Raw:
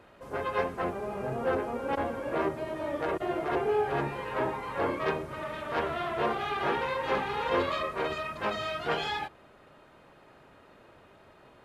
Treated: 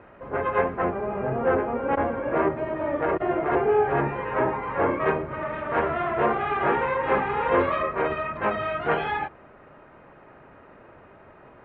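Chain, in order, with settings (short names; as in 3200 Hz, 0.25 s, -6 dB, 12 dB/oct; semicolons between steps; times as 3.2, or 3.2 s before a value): LPF 2300 Hz 24 dB/oct; gain +6.5 dB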